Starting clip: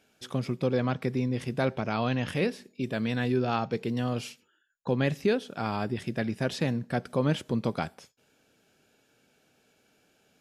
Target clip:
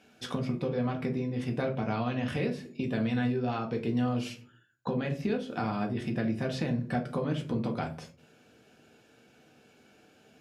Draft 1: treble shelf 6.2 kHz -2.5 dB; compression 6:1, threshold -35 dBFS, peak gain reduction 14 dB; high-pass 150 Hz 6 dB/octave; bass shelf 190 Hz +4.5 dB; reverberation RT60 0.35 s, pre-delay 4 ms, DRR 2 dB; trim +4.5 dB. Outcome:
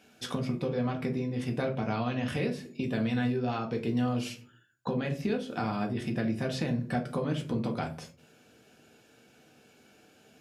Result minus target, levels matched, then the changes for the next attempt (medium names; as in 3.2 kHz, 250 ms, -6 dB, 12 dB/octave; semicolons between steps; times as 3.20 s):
8 kHz band +4.0 dB
change: treble shelf 6.2 kHz -9.5 dB